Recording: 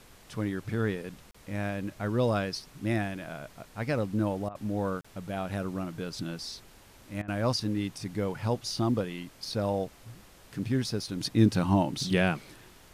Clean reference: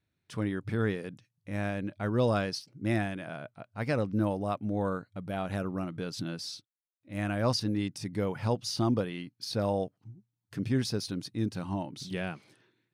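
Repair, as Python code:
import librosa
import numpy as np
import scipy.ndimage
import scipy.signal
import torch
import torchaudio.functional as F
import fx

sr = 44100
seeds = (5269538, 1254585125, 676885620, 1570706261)

y = fx.fix_interpolate(x, sr, at_s=(1.31, 5.01), length_ms=35.0)
y = fx.fix_interpolate(y, sr, at_s=(4.49, 7.22), length_ms=59.0)
y = fx.noise_reduce(y, sr, print_start_s=6.59, print_end_s=7.09, reduce_db=24.0)
y = fx.fix_level(y, sr, at_s=11.2, step_db=-9.5)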